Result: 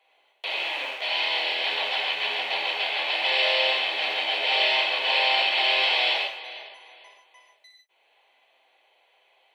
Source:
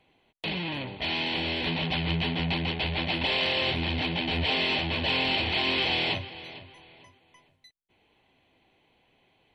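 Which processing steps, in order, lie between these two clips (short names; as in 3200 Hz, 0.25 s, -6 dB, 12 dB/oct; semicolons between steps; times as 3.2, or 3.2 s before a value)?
rattling part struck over -41 dBFS, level -27 dBFS; HPF 540 Hz 24 dB/oct; non-linear reverb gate 0.17 s flat, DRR -3 dB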